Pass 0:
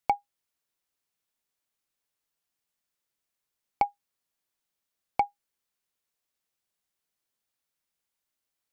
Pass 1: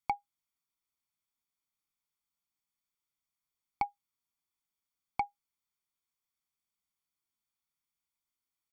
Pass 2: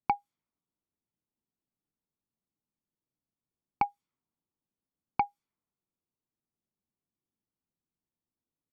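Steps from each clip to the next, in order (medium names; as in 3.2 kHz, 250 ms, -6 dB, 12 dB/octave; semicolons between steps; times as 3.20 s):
comb 0.9 ms, depth 70%; trim -8 dB
level-controlled noise filter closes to 630 Hz, open at -36.5 dBFS; peaking EQ 220 Hz +8.5 dB 2.6 oct; trim +2.5 dB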